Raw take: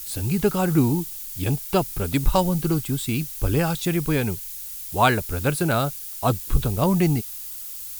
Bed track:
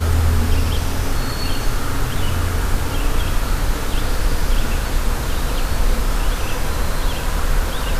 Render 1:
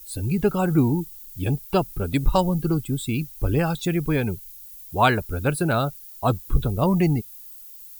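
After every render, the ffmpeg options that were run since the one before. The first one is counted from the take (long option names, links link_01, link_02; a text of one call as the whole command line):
ffmpeg -i in.wav -af "afftdn=noise_reduction=13:noise_floor=-35" out.wav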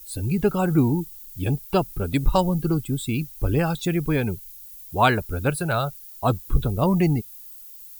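ffmpeg -i in.wav -filter_complex "[0:a]asettb=1/sr,asplit=3[link_01][link_02][link_03];[link_01]atrim=end=5.504[link_04];[link_02]atrim=start=5.5:end=6.12,asetpts=PTS-STARTPTS,afade=type=in:duration=0.004:curve=qsin,afade=type=out:start_time=0.616:duration=0.004:curve=qsin,equalizer=frequency=280:width=2:gain=-13[link_05];[link_03]atrim=start=6.116[link_06];[link_04][link_05]acrossfade=duration=0.004:curve1=hsin:curve2=qsin[link_07];[link_07][link_06]acrossfade=duration=0.004:curve1=qsin:curve2=hsin" out.wav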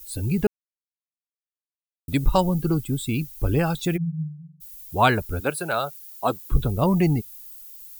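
ffmpeg -i in.wav -filter_complex "[0:a]asplit=3[link_01][link_02][link_03];[link_01]afade=type=out:start_time=3.96:duration=0.02[link_04];[link_02]asuperpass=centerf=160:order=20:qfactor=7,afade=type=in:start_time=3.96:duration=0.02,afade=type=out:start_time=4.6:duration=0.02[link_05];[link_03]afade=type=in:start_time=4.6:duration=0.02[link_06];[link_04][link_05][link_06]amix=inputs=3:normalize=0,asettb=1/sr,asplit=3[link_07][link_08][link_09];[link_07]atrim=end=5.404[link_10];[link_08]atrim=start=5.4:end=6.52,asetpts=PTS-STARTPTS,afade=type=in:duration=0.004:curve=qsin,afade=type=out:start_time=1.116:duration=0.004:curve=qsin,highpass=270[link_11];[link_09]atrim=start=6.516[link_12];[link_10][link_11]acrossfade=duration=0.004:curve1=hsin:curve2=qsin[link_13];[link_13][link_12]acrossfade=duration=0.004:curve1=qsin:curve2=hsin,asplit=3[link_14][link_15][link_16];[link_14]atrim=end=0.47,asetpts=PTS-STARTPTS,afade=type=out:start_time=0.466:duration=0.004:curve=hsin[link_17];[link_15]atrim=start=0.47:end=2.08,asetpts=PTS-STARTPTS,volume=0[link_18];[link_16]atrim=start=2.08,asetpts=PTS-STARTPTS,afade=type=in:duration=0.004:curve=hsin[link_19];[link_17][link_18][link_19]concat=n=3:v=0:a=1" out.wav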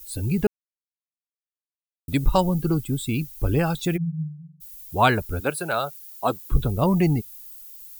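ffmpeg -i in.wav -af anull out.wav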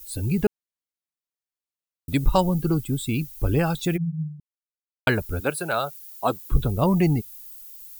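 ffmpeg -i in.wav -filter_complex "[0:a]asplit=3[link_01][link_02][link_03];[link_01]atrim=end=4.4,asetpts=PTS-STARTPTS,afade=type=out:start_time=4.396:duration=0.004:curve=hsin[link_04];[link_02]atrim=start=4.4:end=5.07,asetpts=PTS-STARTPTS,volume=0[link_05];[link_03]atrim=start=5.07,asetpts=PTS-STARTPTS,afade=type=in:duration=0.004:curve=hsin[link_06];[link_04][link_05][link_06]concat=n=3:v=0:a=1" out.wav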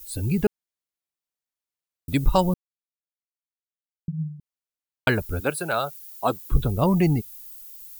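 ffmpeg -i in.wav -filter_complex "[0:a]asplit=3[link_01][link_02][link_03];[link_01]atrim=end=2.54,asetpts=PTS-STARTPTS,afade=type=out:start_time=2.536:duration=0.004:curve=hsin[link_04];[link_02]atrim=start=2.54:end=4.08,asetpts=PTS-STARTPTS,volume=0[link_05];[link_03]atrim=start=4.08,asetpts=PTS-STARTPTS,afade=type=in:duration=0.004:curve=hsin[link_06];[link_04][link_05][link_06]concat=n=3:v=0:a=1" out.wav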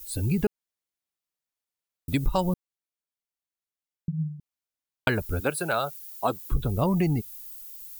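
ffmpeg -i in.wav -af "acompressor=threshold=-21dB:ratio=3" out.wav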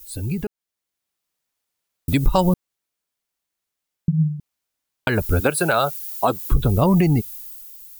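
ffmpeg -i in.wav -af "alimiter=limit=-17dB:level=0:latency=1:release=170,dynaudnorm=framelen=140:gausssize=13:maxgain=10.5dB" out.wav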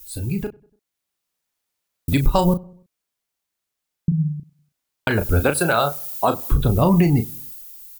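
ffmpeg -i in.wav -filter_complex "[0:a]asplit=2[link_01][link_02];[link_02]adelay=35,volume=-8dB[link_03];[link_01][link_03]amix=inputs=2:normalize=0,asplit=2[link_04][link_05];[link_05]adelay=96,lowpass=frequency=1400:poles=1,volume=-23dB,asplit=2[link_06][link_07];[link_07]adelay=96,lowpass=frequency=1400:poles=1,volume=0.49,asplit=2[link_08][link_09];[link_09]adelay=96,lowpass=frequency=1400:poles=1,volume=0.49[link_10];[link_04][link_06][link_08][link_10]amix=inputs=4:normalize=0" out.wav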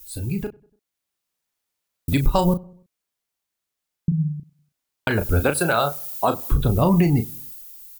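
ffmpeg -i in.wav -af "volume=-1.5dB" out.wav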